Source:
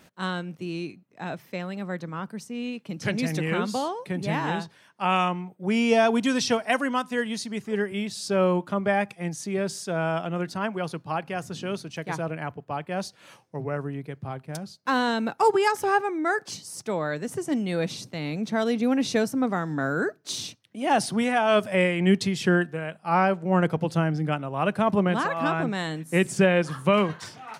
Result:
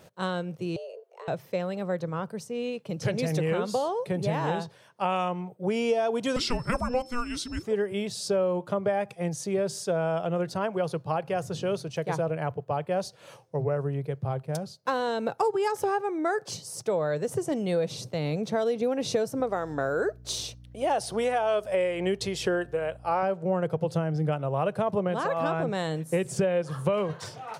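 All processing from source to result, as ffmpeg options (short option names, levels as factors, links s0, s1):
-filter_complex "[0:a]asettb=1/sr,asplit=3[s0][s1][s2];[s0]atrim=end=0.764[s3];[s1]atrim=start=0.76:end=1.28,asetpts=PTS-STARTPTS,afade=t=in:d=0.004:c=qsin,afade=t=out:st=0.516:d=0.004:c=qsin,bandreject=f=413.5:t=h:w=4,bandreject=f=827:t=h:w=4,bandreject=f=1240.5:t=h:w=4,acompressor=threshold=0.00891:ratio=12:attack=3.2:release=140:knee=1:detection=peak,afreqshift=260[s4];[s2]atrim=start=1.276[s5];[s3][s4]acrossfade=d=0.004:c1=hsin:c2=qsin[s6];[s6][s5]acrossfade=d=0.004:c1=qsin:c2=hsin,asettb=1/sr,asplit=3[s7][s8][s9];[s7]atrim=end=6.364[s10];[s8]atrim=start=6.36:end=7.63,asetpts=PTS-STARTPTS,afade=t=in:d=0.004:c=qsin,afade=t=out:st=1.266:d=0.004:c=qsin,afreqshift=-490,aeval=exprs='val(0)+0.00398*sin(2*PI*5300*n/s)':c=same[s11];[s9]atrim=start=7.626[s12];[s10][s11]acrossfade=d=0.004:c1=hsin:c2=qsin[s13];[s13][s12]acrossfade=d=0.004:c1=qsin:c2=hsin,asettb=1/sr,asplit=3[s14][s15][s16];[s14]atrim=end=19.404[s17];[s15]atrim=start=19.4:end=23.23,asetpts=PTS-STARTPTS,afade=t=in:d=0.004:c=qsin,afade=t=out:st=3.826:d=0.004:c=qsin,equalizer=f=160:w=1.5:g=-11,aeval=exprs='val(0)+0.00316*(sin(2*PI*60*n/s)+sin(2*PI*2*60*n/s)/2+sin(2*PI*3*60*n/s)/3+sin(2*PI*4*60*n/s)/4+sin(2*PI*5*60*n/s)/5)':c=same[s18];[s16]atrim=start=23.226[s19];[s17][s18]acrossfade=d=0.004:c1=hsin:c2=qsin[s20];[s20][s19]acrossfade=d=0.004:c1=qsin:c2=hsin,equalizer=f=125:t=o:w=1:g=8,equalizer=f=250:t=o:w=1:g=-8,equalizer=f=500:t=o:w=1:g=10,equalizer=f=2000:t=o:w=1:g=-4,acompressor=threshold=0.0708:ratio=6"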